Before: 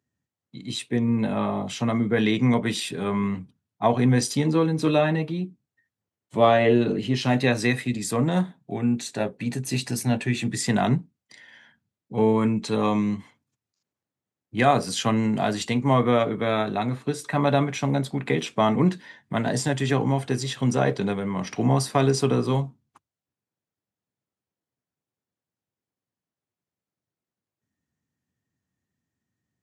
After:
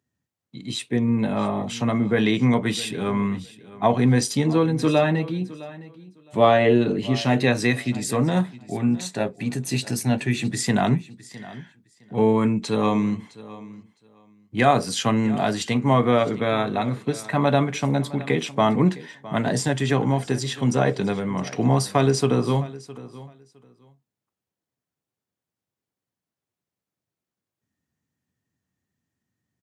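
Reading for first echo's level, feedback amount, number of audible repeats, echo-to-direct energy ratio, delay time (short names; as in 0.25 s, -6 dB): -18.5 dB, 18%, 2, -18.5 dB, 0.661 s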